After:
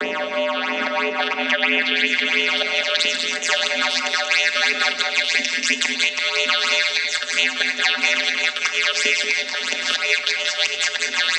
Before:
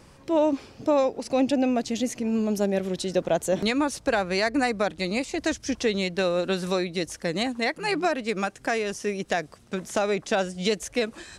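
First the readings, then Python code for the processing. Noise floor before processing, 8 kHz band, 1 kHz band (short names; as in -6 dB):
-52 dBFS, +10.0 dB, +2.5 dB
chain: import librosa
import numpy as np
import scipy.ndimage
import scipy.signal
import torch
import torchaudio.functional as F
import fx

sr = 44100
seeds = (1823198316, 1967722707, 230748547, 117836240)

p1 = fx.bin_compress(x, sr, power=0.6)
p2 = fx.peak_eq(p1, sr, hz=2400.0, db=14.5, octaves=2.6)
p3 = fx.auto_swell(p2, sr, attack_ms=387.0)
p4 = np.diff(p3, prepend=0.0)
p5 = fx.over_compress(p4, sr, threshold_db=-30.0, ratio=-1.0)
p6 = p4 + (p5 * 10.0 ** (-2.0 / 20.0))
p7 = fx.filter_sweep_lowpass(p6, sr, from_hz=690.0, to_hz=5800.0, start_s=0.08, end_s=3.1, q=1.5)
p8 = fx.vocoder(p7, sr, bands=16, carrier='square', carrier_hz=85.2)
p9 = fx.phaser_stages(p8, sr, stages=8, low_hz=260.0, high_hz=1500.0, hz=3.0, feedback_pct=40)
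p10 = p9 + fx.echo_multitap(p9, sr, ms=(102, 183, 207), db=(-17.0, -7.5, -9.0), dry=0)
p11 = fx.room_shoebox(p10, sr, seeds[0], volume_m3=630.0, walls='furnished', distance_m=0.88)
p12 = fx.band_squash(p11, sr, depth_pct=100)
y = p12 * 10.0 ** (5.5 / 20.0)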